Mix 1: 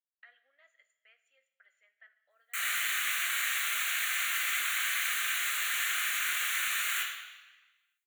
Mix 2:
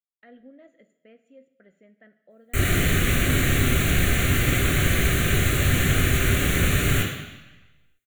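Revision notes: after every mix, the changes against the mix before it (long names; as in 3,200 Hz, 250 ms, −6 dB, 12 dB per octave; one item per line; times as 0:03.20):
background +4.5 dB
master: remove high-pass filter 1,100 Hz 24 dB per octave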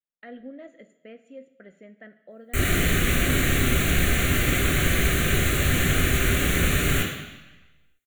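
speech +8.0 dB
master: add parametric band 110 Hz −7 dB 0.47 octaves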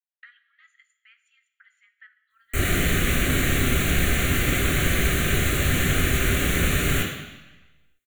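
speech: add Butterworth high-pass 1,200 Hz 96 dB per octave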